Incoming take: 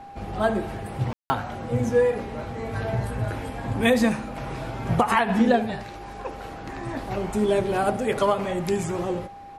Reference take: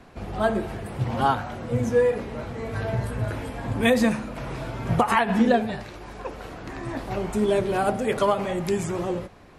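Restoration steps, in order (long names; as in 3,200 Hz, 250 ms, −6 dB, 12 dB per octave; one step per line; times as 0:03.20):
notch filter 800 Hz, Q 30
ambience match 0:01.13–0:01.30
echo removal 72 ms −19.5 dB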